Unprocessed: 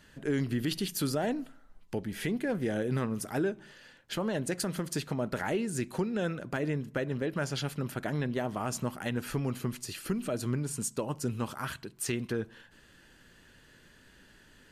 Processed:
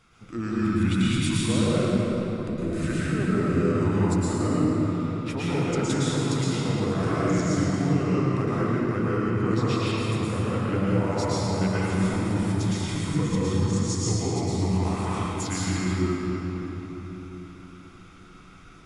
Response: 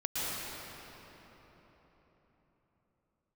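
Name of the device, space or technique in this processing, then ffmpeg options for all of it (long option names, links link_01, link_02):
slowed and reverbed: -filter_complex "[0:a]asetrate=34398,aresample=44100[link_01];[1:a]atrim=start_sample=2205[link_02];[link_01][link_02]afir=irnorm=-1:irlink=0"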